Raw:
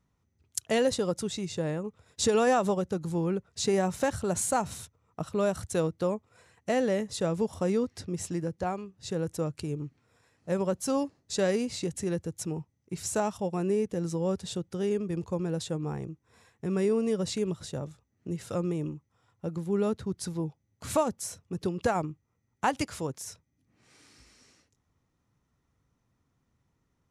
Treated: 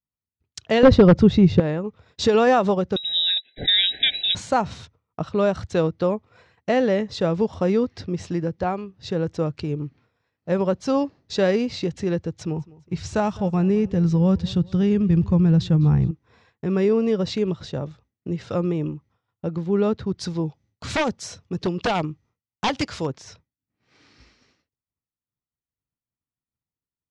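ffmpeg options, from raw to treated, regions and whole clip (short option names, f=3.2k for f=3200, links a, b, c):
-filter_complex "[0:a]asettb=1/sr,asplit=3[a][b][c];[a]atrim=end=0.834[d];[b]atrim=start=0.83:end=1.6,asetpts=PTS-STARTPTS,afade=t=in:d=0.004:c=qsin,afade=t=out:st=0.766:d=0.004:c=qsin,aemphasis=mode=reproduction:type=riaa,acontrast=43,aeval=exprs='0.282*(abs(mod(val(0)/0.282+3,4)-2)-1)':c=same[e];[c]atrim=start=1.596[f];[d][e]acrossfade=d=0.004:c1=hsin:c2=qsin[g];[g][f]acrossfade=d=0.004:c1=qsin:c2=hsin,asettb=1/sr,asplit=3[h][i][j];[h]atrim=end=2.964[k];[i]atrim=start=2.96:end=4.35,asetpts=PTS-STARTPTS,afade=t=in:d=0.004:c=qsin,afade=t=out:st=1.386:d=0.004:c=qsin,highshelf=f=1.7k:t=q:w=1.5:g=7,lowpass=f=3.4k:t=q:w=0.5098,lowpass=f=3.4k:t=q:w=0.6013,lowpass=f=3.4k:t=q:w=0.9,lowpass=f=3.4k:t=q:w=2.563,afreqshift=-4000,asuperstop=centerf=1100:order=20:qfactor=1.5[l];[j]atrim=start=4.346[m];[k][l]acrossfade=d=0.004:c1=hsin:c2=qsin[n];[n][m]acrossfade=d=0.004:c1=qsin:c2=hsin,asettb=1/sr,asplit=3[o][p][q];[o]atrim=end=12.294[r];[p]atrim=start=12.29:end=16.11,asetpts=PTS-STARTPTS,afade=t=in:d=0.004:c=qsin,afade=t=out:st=3.816:d=0.004:c=qsin,asubboost=boost=9.5:cutoff=160,aecho=1:1:205|410|615:0.0794|0.035|0.0154,atrim=end_sample=168462[s];[q]atrim=start=16.106[t];[r][s]acrossfade=d=0.004:c1=hsin:c2=qsin[u];[u][t]acrossfade=d=0.004:c1=qsin:c2=hsin,asettb=1/sr,asplit=3[v][w][x];[v]atrim=end=20.184[y];[w]atrim=start=20.18:end=23.07,asetpts=PTS-STARTPTS,afade=t=in:d=0.004:c=qsin,afade=t=out:st=2.886:d=0.004:c=qsin,aeval=exprs='0.0708*(abs(mod(val(0)/0.0708+3,4)-2)-1)':c=same,aemphasis=mode=production:type=50kf[z];[x]atrim=start=23.066[aa];[y][z]acrossfade=d=0.004:c1=hsin:c2=qsin[ab];[ab][aa]acrossfade=d=0.004:c1=qsin:c2=hsin,lowpass=f=4.9k:w=0.5412,lowpass=f=4.9k:w=1.3066,agate=range=-33dB:threshold=-56dB:ratio=3:detection=peak,volume=7dB"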